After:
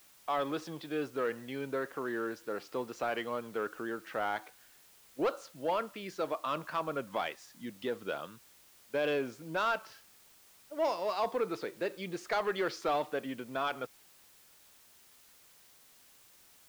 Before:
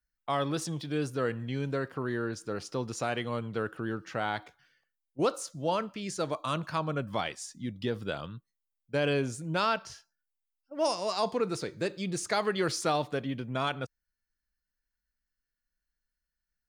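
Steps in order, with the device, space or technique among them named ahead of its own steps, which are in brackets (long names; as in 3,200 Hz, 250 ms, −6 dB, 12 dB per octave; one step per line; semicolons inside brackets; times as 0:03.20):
tape answering machine (band-pass filter 320–3,000 Hz; soft clipping −22.5 dBFS, distortion −17 dB; tape wow and flutter; white noise bed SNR 24 dB)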